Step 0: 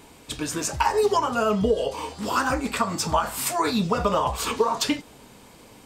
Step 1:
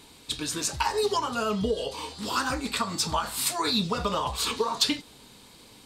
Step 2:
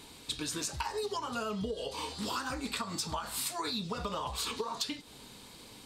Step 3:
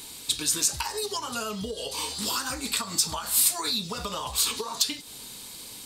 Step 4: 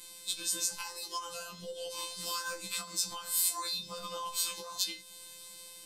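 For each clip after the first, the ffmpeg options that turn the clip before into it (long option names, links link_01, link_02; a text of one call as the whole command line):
ffmpeg -i in.wav -af "equalizer=frequency=630:width_type=o:width=0.67:gain=-4,equalizer=frequency=4000:width_type=o:width=0.67:gain=11,equalizer=frequency=10000:width_type=o:width=0.67:gain=5,volume=-4.5dB" out.wav
ffmpeg -i in.wav -af "acompressor=threshold=-33dB:ratio=6" out.wav
ffmpeg -i in.wav -af "crystalizer=i=3.5:c=0,volume=1.5dB" out.wav
ffmpeg -i in.wav -af "afftfilt=real='hypot(re,im)*cos(PI*b)':imag='0':win_size=1024:overlap=0.75,afftfilt=real='re*1.73*eq(mod(b,3),0)':imag='im*1.73*eq(mod(b,3),0)':win_size=2048:overlap=0.75,volume=-2.5dB" out.wav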